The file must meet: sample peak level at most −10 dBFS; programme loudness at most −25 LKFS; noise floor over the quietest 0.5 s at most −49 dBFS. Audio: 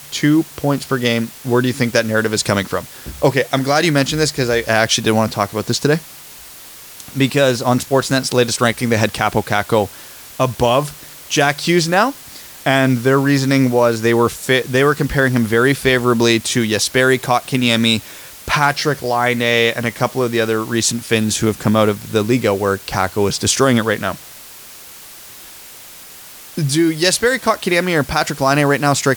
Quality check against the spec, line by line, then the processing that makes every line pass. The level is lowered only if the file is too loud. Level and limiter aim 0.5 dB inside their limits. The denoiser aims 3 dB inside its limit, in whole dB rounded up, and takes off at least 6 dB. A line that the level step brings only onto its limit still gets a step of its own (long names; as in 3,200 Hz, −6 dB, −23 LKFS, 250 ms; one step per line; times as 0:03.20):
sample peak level −1.5 dBFS: out of spec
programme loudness −16.0 LKFS: out of spec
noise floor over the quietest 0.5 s −38 dBFS: out of spec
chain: broadband denoise 6 dB, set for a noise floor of −38 dBFS
level −9.5 dB